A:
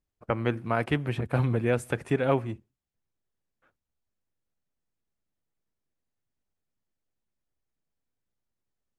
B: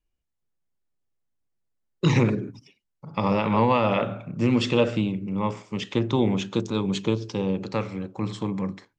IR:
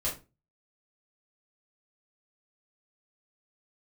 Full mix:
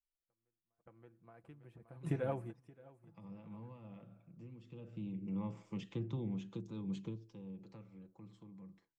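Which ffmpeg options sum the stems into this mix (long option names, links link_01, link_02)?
-filter_complex "[0:a]acompressor=threshold=-24dB:ratio=5,volume=-7.5dB,asplit=2[link_01][link_02];[link_02]volume=-19dB[link_03];[1:a]equalizer=frequency=2800:width=1.3:gain=5,acrossover=split=240[link_04][link_05];[link_05]acompressor=threshold=-36dB:ratio=5[link_06];[link_04][link_06]amix=inputs=2:normalize=0,volume=-10.5dB,afade=type=in:start_time=4.63:duration=0.67:silence=0.237137,afade=type=out:start_time=7.01:duration=0.24:silence=0.281838,asplit=2[link_07][link_08];[link_08]apad=whole_len=400831[link_09];[link_01][link_09]sidechaingate=range=-51dB:threshold=-59dB:ratio=16:detection=peak[link_10];[link_03]aecho=0:1:574|1148|1722|2296:1|0.22|0.0484|0.0106[link_11];[link_10][link_07][link_11]amix=inputs=3:normalize=0,tremolo=f=0.53:d=0.39,equalizer=frequency=3200:width_type=o:width=2.3:gain=-8,aecho=1:1:6:0.45"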